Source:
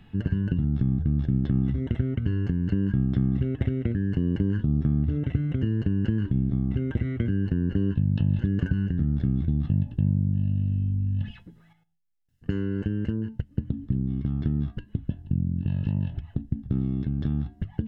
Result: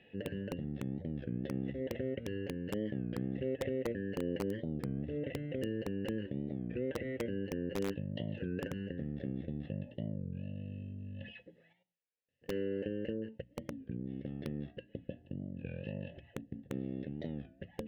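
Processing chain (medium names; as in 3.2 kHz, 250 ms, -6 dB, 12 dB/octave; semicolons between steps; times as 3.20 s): vowel filter e; peaking EQ 1.5 kHz -9.5 dB 0.38 oct; hum notches 60/120/180/240/300 Hz; in parallel at -3.5 dB: integer overflow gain 36 dB; on the sum: warped record 33 1/3 rpm, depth 160 cents; trim +6.5 dB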